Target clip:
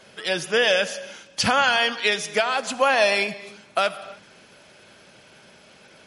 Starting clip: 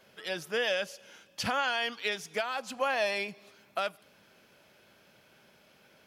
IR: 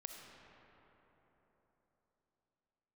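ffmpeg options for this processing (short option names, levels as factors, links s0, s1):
-filter_complex "[0:a]highshelf=f=7300:g=5,asplit=2[s0][s1];[1:a]atrim=start_sample=2205,afade=t=out:st=0.37:d=0.01,atrim=end_sample=16758[s2];[s1][s2]afir=irnorm=-1:irlink=0,volume=0.841[s3];[s0][s3]amix=inputs=2:normalize=0,volume=2.37" -ar 44100 -c:a libmp3lame -b:a 48k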